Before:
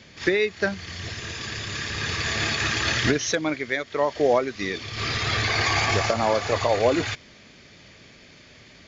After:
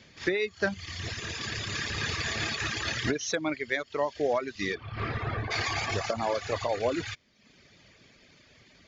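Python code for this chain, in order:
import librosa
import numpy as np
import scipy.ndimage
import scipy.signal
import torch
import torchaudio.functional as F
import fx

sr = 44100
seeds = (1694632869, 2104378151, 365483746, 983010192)

y = fx.lowpass(x, sr, hz=fx.line((4.74, 2000.0), (5.5, 1100.0)), slope=12, at=(4.74, 5.5), fade=0.02)
y = fx.dereverb_blind(y, sr, rt60_s=0.72)
y = fx.rider(y, sr, range_db=4, speed_s=0.5)
y = y * 10.0 ** (-4.5 / 20.0)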